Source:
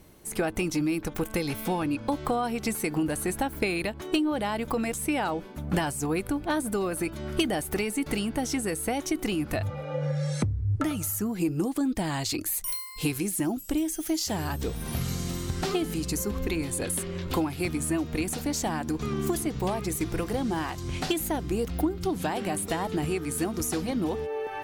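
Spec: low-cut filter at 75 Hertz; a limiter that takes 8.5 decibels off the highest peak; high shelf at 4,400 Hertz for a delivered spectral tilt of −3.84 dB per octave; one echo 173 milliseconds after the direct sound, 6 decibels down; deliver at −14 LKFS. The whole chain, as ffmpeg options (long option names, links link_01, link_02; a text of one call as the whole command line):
ffmpeg -i in.wav -af "highpass=75,highshelf=frequency=4400:gain=7,alimiter=limit=-19dB:level=0:latency=1,aecho=1:1:173:0.501,volume=14dB" out.wav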